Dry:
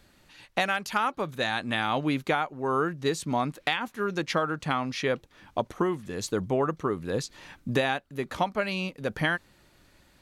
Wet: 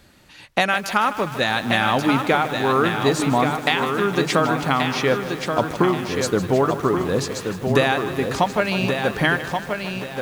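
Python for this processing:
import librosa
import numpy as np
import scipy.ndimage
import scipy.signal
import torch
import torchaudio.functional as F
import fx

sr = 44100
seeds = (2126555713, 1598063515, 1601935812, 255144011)

y = fx.highpass(x, sr, hz=75.0, slope=6)
y = fx.low_shelf(y, sr, hz=120.0, db=6.5)
y = fx.hum_notches(y, sr, base_hz=50, count=3)
y = fx.echo_feedback(y, sr, ms=1129, feedback_pct=32, wet_db=-6)
y = fx.echo_crushed(y, sr, ms=154, feedback_pct=80, bits=7, wet_db=-13.0)
y = F.gain(torch.from_numpy(y), 7.0).numpy()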